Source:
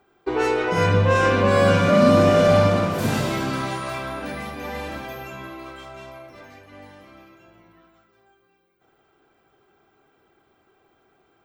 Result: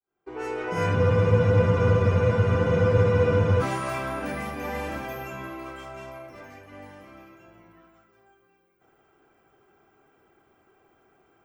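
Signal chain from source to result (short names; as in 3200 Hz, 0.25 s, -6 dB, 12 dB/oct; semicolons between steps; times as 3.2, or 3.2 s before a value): opening faded in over 1.59 s; bell 3900 Hz -9 dB 0.52 oct; spectral freeze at 0.98, 2.64 s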